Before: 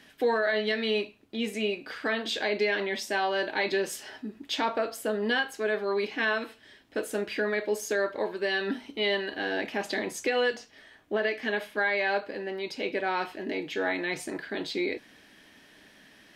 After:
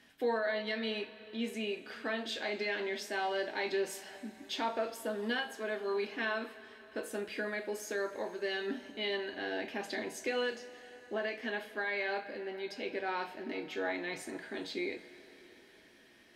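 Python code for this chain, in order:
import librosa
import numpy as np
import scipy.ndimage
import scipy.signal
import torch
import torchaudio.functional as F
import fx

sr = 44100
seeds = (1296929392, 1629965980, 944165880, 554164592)

y = fx.rev_double_slope(x, sr, seeds[0], early_s=0.22, late_s=4.8, knee_db=-20, drr_db=6.0)
y = F.gain(torch.from_numpy(y), -8.0).numpy()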